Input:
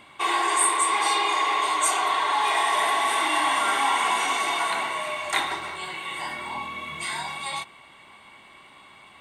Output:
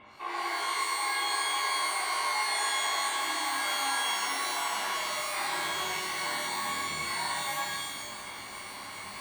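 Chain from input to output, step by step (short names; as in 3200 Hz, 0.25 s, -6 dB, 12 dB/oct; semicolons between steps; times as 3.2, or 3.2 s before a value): LPF 2300 Hz 12 dB/oct; reverse; compressor 6:1, threshold -40 dBFS, peak gain reduction 19 dB; reverse; shimmer reverb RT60 1 s, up +12 st, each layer -2 dB, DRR -4 dB; gain +1.5 dB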